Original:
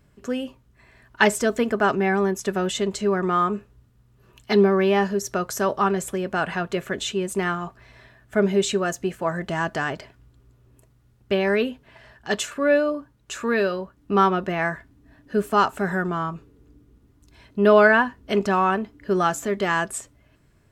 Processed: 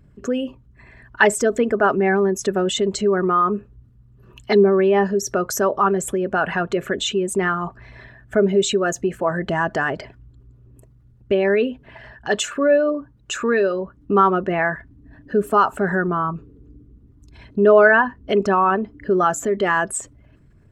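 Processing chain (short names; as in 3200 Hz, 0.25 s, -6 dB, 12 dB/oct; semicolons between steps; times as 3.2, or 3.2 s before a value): formant sharpening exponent 1.5; in parallel at 0 dB: compressor, threshold -31 dBFS, peak gain reduction 19 dB; on the sum: gain +1.5 dB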